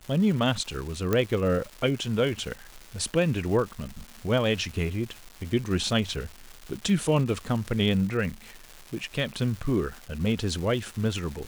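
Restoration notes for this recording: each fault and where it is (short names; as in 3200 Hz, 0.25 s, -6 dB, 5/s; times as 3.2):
crackle 510/s -35 dBFS
1.13 pop -11 dBFS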